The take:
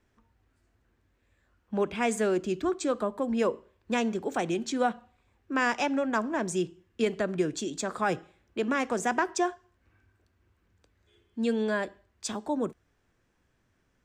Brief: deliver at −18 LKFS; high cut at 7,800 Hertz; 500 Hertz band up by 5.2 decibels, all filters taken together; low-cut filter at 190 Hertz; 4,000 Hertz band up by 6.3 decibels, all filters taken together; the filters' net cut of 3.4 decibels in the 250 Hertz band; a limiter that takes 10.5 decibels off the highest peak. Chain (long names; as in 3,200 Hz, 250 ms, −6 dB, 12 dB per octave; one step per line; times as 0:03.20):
high-pass filter 190 Hz
low-pass filter 7,800 Hz
parametric band 250 Hz −6.5 dB
parametric band 500 Hz +8.5 dB
parametric band 4,000 Hz +8.5 dB
level +13 dB
brickwall limiter −7.5 dBFS